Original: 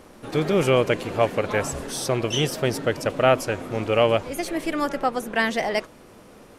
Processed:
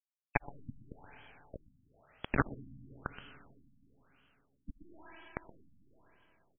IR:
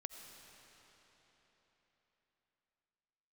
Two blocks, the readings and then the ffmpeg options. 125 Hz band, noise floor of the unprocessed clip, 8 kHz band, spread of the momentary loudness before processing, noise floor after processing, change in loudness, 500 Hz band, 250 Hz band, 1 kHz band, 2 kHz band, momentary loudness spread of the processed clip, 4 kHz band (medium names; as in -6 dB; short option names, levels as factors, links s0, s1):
-17.0 dB, -48 dBFS, under -40 dB, 8 LU, under -85 dBFS, -17.0 dB, -27.5 dB, -18.5 dB, -18.5 dB, -15.5 dB, 22 LU, -29.5 dB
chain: -filter_complex "[0:a]highpass=210,bandreject=f=50:t=h:w=6,bandreject=f=100:t=h:w=6,bandreject=f=150:t=h:w=6,bandreject=f=200:t=h:w=6,bandreject=f=250:t=h:w=6,bandreject=f=300:t=h:w=6,bandreject=f=350:t=h:w=6,bandreject=f=400:t=h:w=6,bandreject=f=450:t=h:w=6,bandreject=f=500:t=h:w=6,adynamicequalizer=threshold=0.00794:dfrequency=820:dqfactor=5.6:tfrequency=820:tqfactor=5.6:attack=5:release=100:ratio=0.375:range=4:mode=boostabove:tftype=bell,acompressor=threshold=0.0708:ratio=12,asplit=3[s0][s1][s2];[s0]bandpass=f=270:t=q:w=8,volume=1[s3];[s1]bandpass=f=2290:t=q:w=8,volume=0.501[s4];[s2]bandpass=f=3010:t=q:w=8,volume=0.355[s5];[s3][s4][s5]amix=inputs=3:normalize=0,acrusher=bits=4:mix=0:aa=0.000001,aphaser=in_gain=1:out_gain=1:delay=1.8:decay=0.5:speed=0.92:type=triangular,aecho=1:1:124:0.158,asplit=2[s6][s7];[1:a]atrim=start_sample=2205,asetrate=48510,aresample=44100[s8];[s7][s8]afir=irnorm=-1:irlink=0,volume=1.12[s9];[s6][s9]amix=inputs=2:normalize=0,afftfilt=real='re*lt(b*sr/1024,270*pow(3400/270,0.5+0.5*sin(2*PI*1*pts/sr)))':imag='im*lt(b*sr/1024,270*pow(3400/270,0.5+0.5*sin(2*PI*1*pts/sr)))':win_size=1024:overlap=0.75,volume=4.22"